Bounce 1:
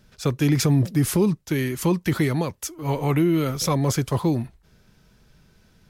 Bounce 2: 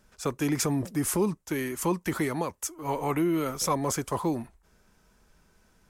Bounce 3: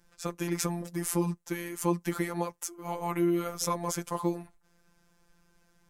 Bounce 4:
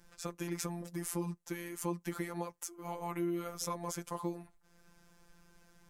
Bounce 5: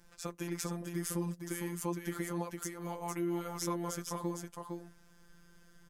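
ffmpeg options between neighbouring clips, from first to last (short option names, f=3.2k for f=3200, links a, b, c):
-af "equalizer=f=125:t=o:w=1:g=-10,equalizer=f=1k:t=o:w=1:g=5,equalizer=f=4k:t=o:w=1:g=-6,equalizer=f=8k:t=o:w=1:g=6,volume=-4.5dB"
-af "afftfilt=real='hypot(re,im)*cos(PI*b)':imag='0':win_size=1024:overlap=0.75"
-af "acompressor=threshold=-56dB:ratio=1.5,volume=3dB"
-af "aecho=1:1:458:0.562"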